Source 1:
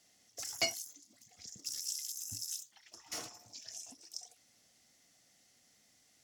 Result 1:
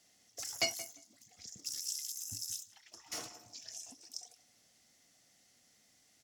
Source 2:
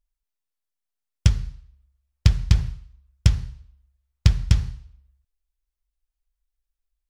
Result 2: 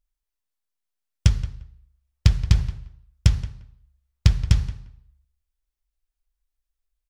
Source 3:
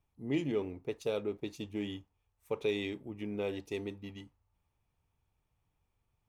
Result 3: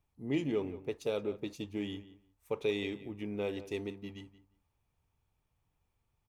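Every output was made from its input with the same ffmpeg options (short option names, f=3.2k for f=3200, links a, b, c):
-filter_complex "[0:a]asplit=2[a][b];[b]adelay=175,lowpass=f=2.4k:p=1,volume=-14.5dB,asplit=2[c][d];[d]adelay=175,lowpass=f=2.4k:p=1,volume=0.18[e];[a][c][e]amix=inputs=3:normalize=0"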